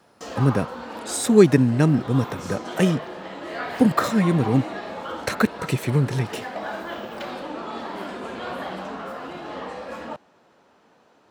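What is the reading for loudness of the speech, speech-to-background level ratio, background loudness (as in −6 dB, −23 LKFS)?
−21.5 LKFS, 12.0 dB, −33.5 LKFS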